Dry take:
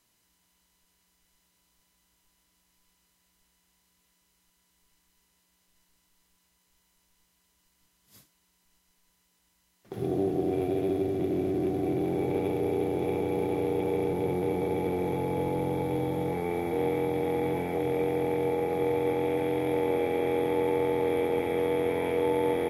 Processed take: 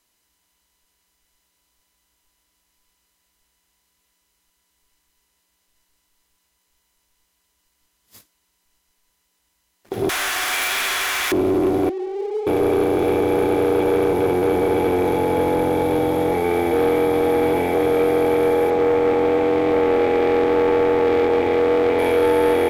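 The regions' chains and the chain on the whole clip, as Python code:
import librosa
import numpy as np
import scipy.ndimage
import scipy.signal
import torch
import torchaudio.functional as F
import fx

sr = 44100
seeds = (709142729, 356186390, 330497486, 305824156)

y = fx.chain(x, sr, fx.zero_step(step_db=-35.0),
    fx.highpass(hz=1400.0, slope=24),
    fx.leveller(passes=5), at=(10.09, 11.32))
y = fx.chain(y, sr, fx.sine_speech(),
    fx.bandpass_q(hz=580.0, q=4.0), at=(11.89, 12.47))
y = fx.chain(y, sr, fx.air_absorb(metres=200.0),
    fx.doppler_dist(depth_ms=0.17), at=(18.7, 21.99))
y = fx.leveller(y, sr, passes=2)
y = fx.peak_eq(y, sr, hz=150.0, db=-13.0, octaves=0.73)
y = y * librosa.db_to_amplitude(6.0)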